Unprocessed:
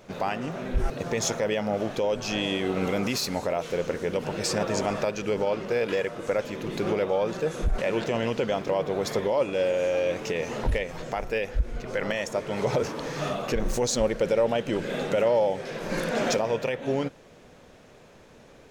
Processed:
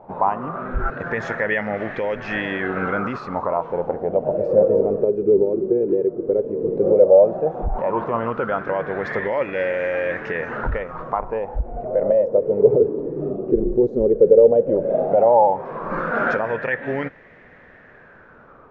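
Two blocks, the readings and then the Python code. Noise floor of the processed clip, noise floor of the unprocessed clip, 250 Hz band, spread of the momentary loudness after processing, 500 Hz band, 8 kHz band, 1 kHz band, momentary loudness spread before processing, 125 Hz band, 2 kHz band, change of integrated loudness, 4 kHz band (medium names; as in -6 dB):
-48 dBFS, -52 dBFS, +4.5 dB, 12 LU, +8.5 dB, under -25 dB, +8.5 dB, 6 LU, +1.5 dB, +6.5 dB, +7.5 dB, under -10 dB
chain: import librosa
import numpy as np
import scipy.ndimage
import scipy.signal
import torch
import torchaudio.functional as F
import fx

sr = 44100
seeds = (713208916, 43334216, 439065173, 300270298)

y = fx.filter_lfo_lowpass(x, sr, shape='sine', hz=0.13, low_hz=370.0, high_hz=1900.0, q=7.1)
y = y * librosa.db_to_amplitude(1.0)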